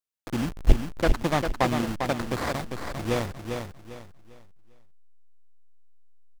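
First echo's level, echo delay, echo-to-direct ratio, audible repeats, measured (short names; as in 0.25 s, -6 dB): -6.0 dB, 0.399 s, -5.5 dB, 3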